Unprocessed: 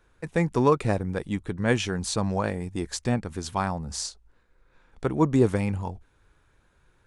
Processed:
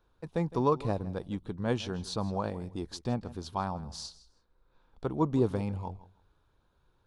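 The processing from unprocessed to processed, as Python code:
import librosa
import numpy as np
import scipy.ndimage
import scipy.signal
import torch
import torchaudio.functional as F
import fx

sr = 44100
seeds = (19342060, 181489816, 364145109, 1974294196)

y = fx.graphic_eq(x, sr, hz=(1000, 2000, 4000, 8000), db=(4, -11, 6, -11))
y = fx.echo_feedback(y, sr, ms=161, feedback_pct=18, wet_db=-18.0)
y = y * librosa.db_to_amplitude(-6.5)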